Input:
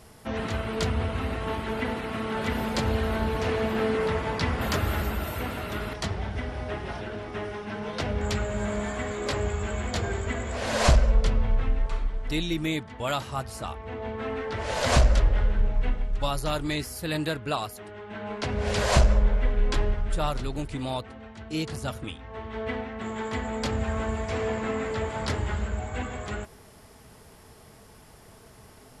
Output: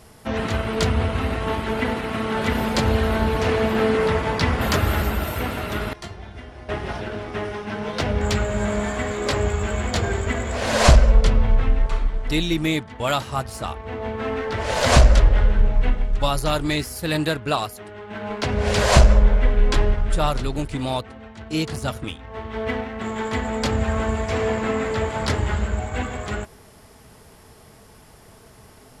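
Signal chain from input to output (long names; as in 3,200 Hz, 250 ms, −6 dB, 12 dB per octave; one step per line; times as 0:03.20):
in parallel at −5 dB: dead-zone distortion −38.5 dBFS
0:05.93–0:06.69: on the sum: tuned comb filter 350 Hz, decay 0.24 s, harmonics all, mix 80%
level +3 dB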